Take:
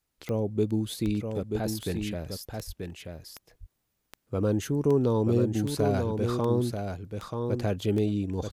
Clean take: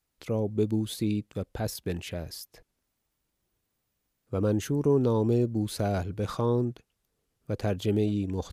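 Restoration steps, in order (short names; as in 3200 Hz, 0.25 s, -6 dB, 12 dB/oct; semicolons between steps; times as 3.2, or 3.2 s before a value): de-click; 1.05–1.17 HPF 140 Hz 24 dB/oct; 2.66–2.78 HPF 140 Hz 24 dB/oct; inverse comb 0.934 s -5.5 dB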